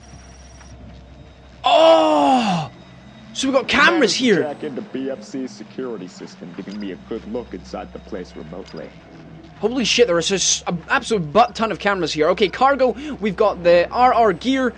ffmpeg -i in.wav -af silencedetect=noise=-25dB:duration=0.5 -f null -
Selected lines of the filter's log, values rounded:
silence_start: 0.00
silence_end: 1.64 | silence_duration: 1.64
silence_start: 2.67
silence_end: 3.36 | silence_duration: 0.69
silence_start: 8.84
silence_end: 9.63 | silence_duration: 0.79